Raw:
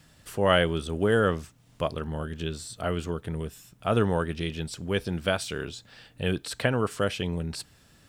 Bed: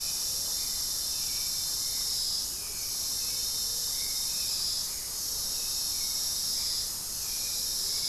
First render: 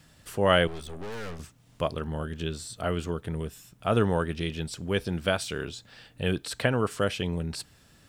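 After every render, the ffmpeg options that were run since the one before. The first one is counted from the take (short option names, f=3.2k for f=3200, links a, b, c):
-filter_complex "[0:a]asettb=1/sr,asplit=3[a][b][c];[a]atrim=end=0.674[d];[b]atrim=start=0.67:end=1.4,asetpts=PTS-STARTPTS,afade=t=in:d=0.004:c=qsin,afade=t=out:st=0.726:d=0.004:c=qsin,aeval=exprs='(tanh(63.1*val(0)+0.75)-tanh(0.75))/63.1':c=same[e];[c]atrim=start=1.396[f];[d][e]acrossfade=d=0.004:c1=hsin:c2=qsin[g];[g][f]acrossfade=d=0.004:c1=qsin:c2=hsin"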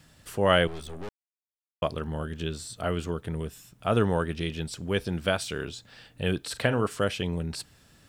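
-filter_complex "[0:a]asettb=1/sr,asplit=3[a][b][c];[a]atrim=end=6.434[d];[b]atrim=start=6.43:end=6.87,asetpts=PTS-STARTPTS,afade=t=in:d=0.004:c=qsin,afade=t=out:st=0.436:d=0.004:c=qsin,asplit=2[e][f];[f]adelay=42,volume=-13dB[g];[e][g]amix=inputs=2:normalize=0,atrim=end_sample=19404[h];[c]atrim=start=6.866[i];[d][h]acrossfade=d=0.004:c1=hsin:c2=qsin[j];[j][i]acrossfade=d=0.004:c1=qsin:c2=hsin,asplit=3[k][l][m];[k]atrim=end=1.09,asetpts=PTS-STARTPTS,afade=t=out:st=1.086:d=0.004:c=hsin[n];[l]atrim=start=1.09:end=1.82,asetpts=PTS-STARTPTS,volume=0[o];[m]atrim=start=1.82,asetpts=PTS-STARTPTS,afade=t=in:d=0.004:c=hsin[p];[n][o][p]concat=n=3:v=0:a=1"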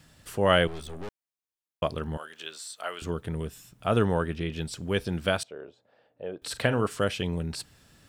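-filter_complex "[0:a]asettb=1/sr,asplit=3[a][b][c];[a]atrim=end=2.174[d];[b]atrim=start=2.17:end=3.02,asetpts=PTS-STARTPTS,afade=t=in:d=0.004:c=qsin,afade=t=out:st=0.846:d=0.004:c=qsin,highpass=800[e];[c]atrim=start=3.016[f];[d][e]acrossfade=d=0.004:c1=hsin:c2=qsin[g];[g][f]acrossfade=d=0.004:c1=qsin:c2=hsin,asettb=1/sr,asplit=3[h][i][j];[h]atrim=end=4.044[k];[i]atrim=start=4.04:end=4.56,asetpts=PTS-STARTPTS,afade=t=in:d=0.004:c=qsin,afade=t=out:st=0.516:d=0.004:c=qsin,acrossover=split=2900[l][m];[m]acompressor=threshold=-50dB:ratio=4:attack=1:release=60[n];[l][n]amix=inputs=2:normalize=0[o];[j]atrim=start=4.556[p];[k][o]acrossfade=d=0.004:c1=hsin:c2=qsin[q];[q][p]acrossfade=d=0.004:c1=qsin:c2=hsin,asettb=1/sr,asplit=3[r][s][t];[r]atrim=end=5.434[u];[s]atrim=start=5.43:end=6.42,asetpts=PTS-STARTPTS,afade=t=in:d=0.004:c=qsin,afade=t=out:st=0.986:d=0.004:c=qsin,bandpass=f=580:t=q:w=2.5[v];[t]atrim=start=6.416[w];[u][v]acrossfade=d=0.004:c1=hsin:c2=qsin[x];[x][w]acrossfade=d=0.004:c1=qsin:c2=hsin"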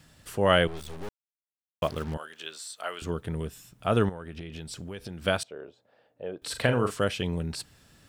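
-filter_complex "[0:a]asettb=1/sr,asplit=3[a][b][c];[a]atrim=end=0.774[d];[b]atrim=start=0.77:end=2.14,asetpts=PTS-STARTPTS,afade=t=in:d=0.004:c=qsin,afade=t=out:st=1.366:d=0.004:c=qsin,acrusher=bits=6:mix=0:aa=0.5[e];[c]atrim=start=2.136[f];[d][e]acrossfade=d=0.004:c1=hsin:c2=qsin[g];[g][f]acrossfade=d=0.004:c1=qsin:c2=hsin,asettb=1/sr,asplit=3[h][i][j];[h]atrim=end=4.094[k];[i]atrim=start=4.09:end=5.22,asetpts=PTS-STARTPTS,afade=t=in:d=0.004:c=qsin,afade=t=out:st=1.126:d=0.004:c=qsin,acompressor=threshold=-34dB:ratio=10:attack=3.2:release=140:knee=1:detection=peak[l];[j]atrim=start=5.216[m];[k][l]acrossfade=d=0.004:c1=hsin:c2=qsin[n];[n][m]acrossfade=d=0.004:c1=qsin:c2=hsin,asettb=1/sr,asplit=3[o][p][q];[o]atrim=end=6.394[r];[p]atrim=start=6.39:end=6.94,asetpts=PTS-STARTPTS,afade=t=in:d=0.004:c=qsin,afade=t=out:st=0.546:d=0.004:c=qsin,asplit=2[s][t];[t]adelay=40,volume=-9dB[u];[s][u]amix=inputs=2:normalize=0,atrim=end_sample=24255[v];[q]atrim=start=6.936[w];[r][v]acrossfade=d=0.004:c1=hsin:c2=qsin[x];[x][w]acrossfade=d=0.004:c1=qsin:c2=hsin"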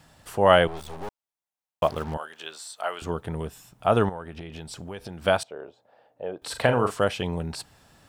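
-af "equalizer=f=820:w=1.3:g=9.5"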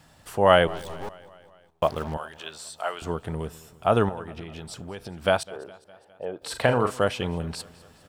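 -af "aecho=1:1:205|410|615|820|1025:0.0841|0.0496|0.0293|0.0173|0.0102"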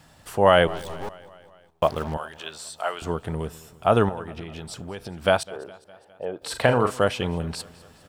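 -af "volume=2dB,alimiter=limit=-3dB:level=0:latency=1"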